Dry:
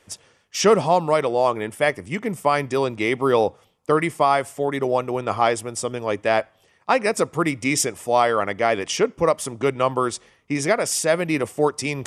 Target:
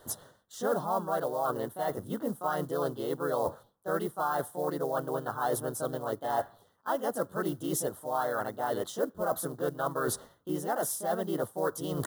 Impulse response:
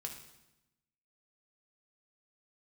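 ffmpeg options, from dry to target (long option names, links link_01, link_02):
-filter_complex "[0:a]highshelf=frequency=3300:width_type=q:width=1.5:gain=-7,areverse,acompressor=threshold=-35dB:ratio=4,areverse,asetrate=46722,aresample=44100,atempo=0.943874,acrusher=bits=6:mode=log:mix=0:aa=0.000001,aexciter=amount=1.3:drive=9:freq=9300,asplit=2[link_01][link_02];[link_02]asetrate=52444,aresample=44100,atempo=0.840896,volume=-2dB[link_03];[link_01][link_03]amix=inputs=2:normalize=0,asuperstop=centerf=2400:order=4:qfactor=1.1,volume=2.5dB"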